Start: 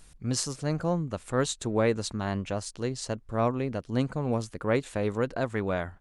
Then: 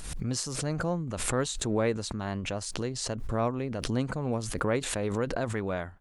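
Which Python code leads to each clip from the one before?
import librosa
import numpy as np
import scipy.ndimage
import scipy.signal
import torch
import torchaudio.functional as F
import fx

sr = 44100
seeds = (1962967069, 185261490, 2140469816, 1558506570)

y = fx.pre_swell(x, sr, db_per_s=37.0)
y = y * librosa.db_to_amplitude(-3.0)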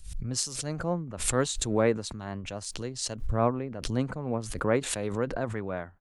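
y = fx.band_widen(x, sr, depth_pct=100)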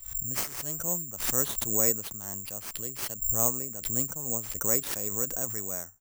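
y = (np.kron(x[::6], np.eye(6)[0]) * 6)[:len(x)]
y = y * librosa.db_to_amplitude(-8.5)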